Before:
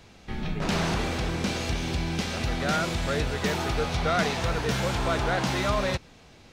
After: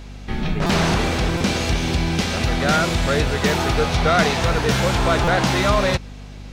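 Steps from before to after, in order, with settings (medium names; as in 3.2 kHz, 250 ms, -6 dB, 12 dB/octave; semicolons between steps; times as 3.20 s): hum 50 Hz, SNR 17 dB; buffer glitch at 0.66/1.37/5.24 s, samples 256, times 5; trim +8 dB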